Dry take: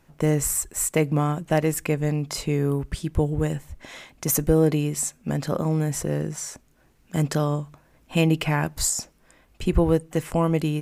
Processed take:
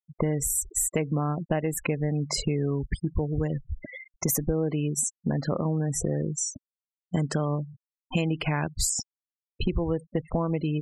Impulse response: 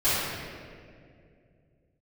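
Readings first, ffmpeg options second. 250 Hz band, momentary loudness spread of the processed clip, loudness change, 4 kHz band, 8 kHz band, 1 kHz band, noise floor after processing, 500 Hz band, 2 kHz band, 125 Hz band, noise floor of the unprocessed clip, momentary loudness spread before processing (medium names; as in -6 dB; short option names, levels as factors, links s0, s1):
-4.0 dB, 6 LU, -4.0 dB, -2.0 dB, -1.5 dB, -5.0 dB, under -85 dBFS, -5.5 dB, -4.5 dB, -4.0 dB, -60 dBFS, 10 LU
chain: -af "afftfilt=real='re*gte(hypot(re,im),0.0316)':imag='im*gte(hypot(re,im),0.0316)':win_size=1024:overlap=0.75,acompressor=threshold=0.0282:ratio=6,volume=2.24"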